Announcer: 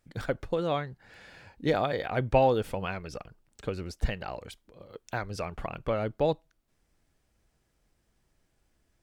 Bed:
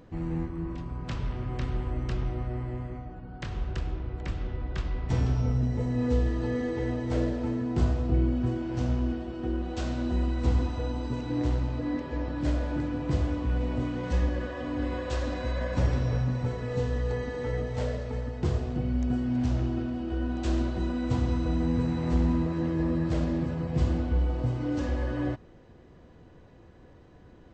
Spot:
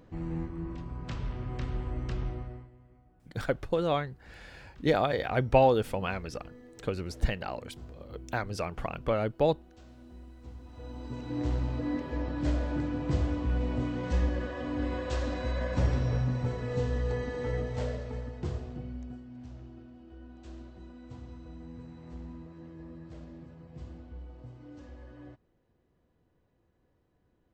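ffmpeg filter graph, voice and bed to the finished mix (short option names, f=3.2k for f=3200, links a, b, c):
-filter_complex "[0:a]adelay=3200,volume=1dB[a];[1:a]volume=17dB,afade=t=out:st=2.27:d=0.43:silence=0.11885,afade=t=in:st=10.63:d=1.08:silence=0.0944061,afade=t=out:st=17.55:d=1.7:silence=0.133352[b];[a][b]amix=inputs=2:normalize=0"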